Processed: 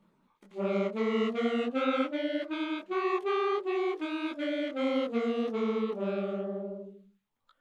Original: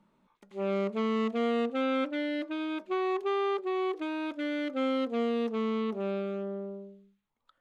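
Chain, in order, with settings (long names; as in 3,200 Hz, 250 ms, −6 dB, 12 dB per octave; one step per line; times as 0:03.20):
spectral magnitudes quantised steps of 15 dB
micro pitch shift up and down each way 55 cents
level +4 dB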